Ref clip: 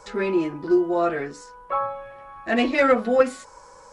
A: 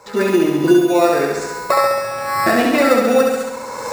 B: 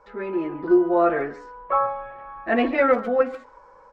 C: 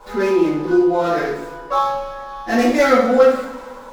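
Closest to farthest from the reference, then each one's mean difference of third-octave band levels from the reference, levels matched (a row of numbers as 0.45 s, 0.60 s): B, C, A; 4.0 dB, 6.5 dB, 11.5 dB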